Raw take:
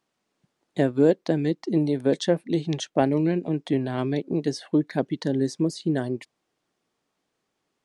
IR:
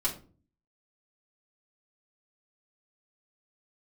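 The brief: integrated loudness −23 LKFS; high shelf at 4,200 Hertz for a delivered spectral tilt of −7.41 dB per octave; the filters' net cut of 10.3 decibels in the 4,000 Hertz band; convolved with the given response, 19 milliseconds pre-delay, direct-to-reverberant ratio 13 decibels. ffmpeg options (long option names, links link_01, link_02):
-filter_complex "[0:a]equalizer=frequency=4000:width_type=o:gain=-8.5,highshelf=frequency=4200:gain=-8.5,asplit=2[link_01][link_02];[1:a]atrim=start_sample=2205,adelay=19[link_03];[link_02][link_03]afir=irnorm=-1:irlink=0,volume=-19dB[link_04];[link_01][link_04]amix=inputs=2:normalize=0,volume=2dB"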